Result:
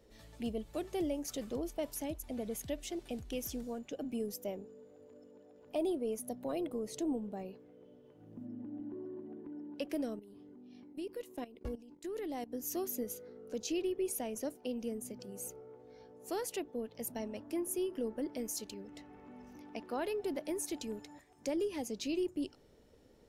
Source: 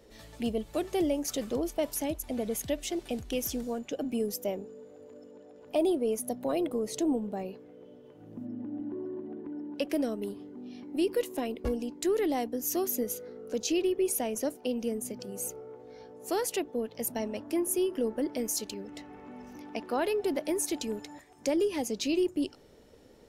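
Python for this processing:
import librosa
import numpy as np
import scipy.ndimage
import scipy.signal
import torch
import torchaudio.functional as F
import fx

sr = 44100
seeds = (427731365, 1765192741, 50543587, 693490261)

y = fx.level_steps(x, sr, step_db=16, at=(10.19, 12.51))
y = fx.low_shelf(y, sr, hz=180.0, db=4.5)
y = y * librosa.db_to_amplitude(-8.0)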